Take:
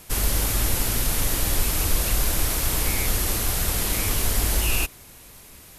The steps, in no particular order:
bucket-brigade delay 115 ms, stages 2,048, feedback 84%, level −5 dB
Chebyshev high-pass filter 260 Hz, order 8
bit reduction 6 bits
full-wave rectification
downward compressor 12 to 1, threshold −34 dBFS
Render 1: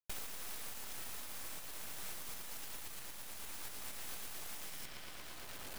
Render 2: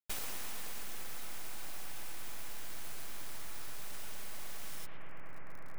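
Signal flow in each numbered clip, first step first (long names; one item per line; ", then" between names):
bucket-brigade delay, then bit reduction, then downward compressor, then Chebyshev high-pass filter, then full-wave rectification
bit reduction, then Chebyshev high-pass filter, then full-wave rectification, then bucket-brigade delay, then downward compressor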